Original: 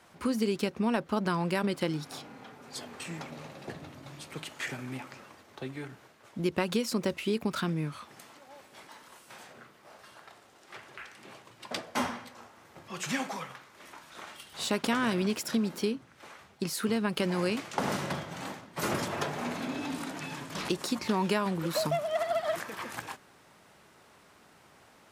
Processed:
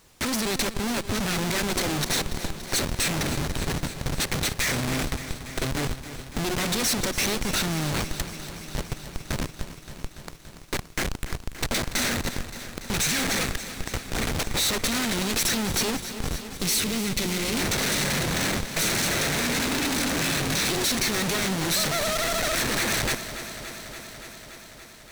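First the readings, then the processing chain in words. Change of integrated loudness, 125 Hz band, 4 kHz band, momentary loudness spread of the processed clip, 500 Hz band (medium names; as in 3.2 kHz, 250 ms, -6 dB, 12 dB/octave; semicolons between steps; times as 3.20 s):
+7.0 dB, +8.0 dB, +13.0 dB, 13 LU, +2.0 dB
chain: comb filter that takes the minimum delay 0.51 ms; treble shelf 2.3 kHz +10 dB; de-hum 365.1 Hz, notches 12; in parallel at +2.5 dB: peak limiter -22.5 dBFS, peak gain reduction 11 dB; on the sum: band-stop 1.1 kHz, Q 13; Schmitt trigger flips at -31 dBFS; power-law waveshaper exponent 1.4; added noise pink -62 dBFS; time-frequency box 16.62–17.54 s, 480–1900 Hz -6 dB; peaking EQ 6.6 kHz +5.5 dB 2.5 oct; bit-crushed delay 286 ms, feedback 80%, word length 10-bit, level -13 dB; trim +3.5 dB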